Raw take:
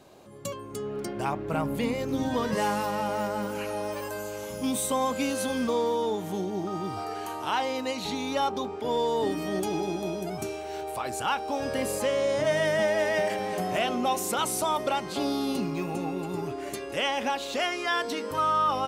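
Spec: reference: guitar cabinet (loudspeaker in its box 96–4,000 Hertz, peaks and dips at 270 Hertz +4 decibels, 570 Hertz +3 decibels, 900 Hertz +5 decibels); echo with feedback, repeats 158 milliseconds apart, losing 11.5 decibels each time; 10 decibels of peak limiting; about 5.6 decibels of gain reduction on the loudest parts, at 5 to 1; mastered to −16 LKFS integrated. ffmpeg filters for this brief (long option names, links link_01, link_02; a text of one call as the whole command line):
ffmpeg -i in.wav -af "acompressor=threshold=-28dB:ratio=5,alimiter=level_in=5dB:limit=-24dB:level=0:latency=1,volume=-5dB,highpass=96,equalizer=frequency=270:width_type=q:width=4:gain=4,equalizer=frequency=570:width_type=q:width=4:gain=3,equalizer=frequency=900:width_type=q:width=4:gain=5,lowpass=frequency=4000:width=0.5412,lowpass=frequency=4000:width=1.3066,aecho=1:1:158|316|474:0.266|0.0718|0.0194,volume=19dB" out.wav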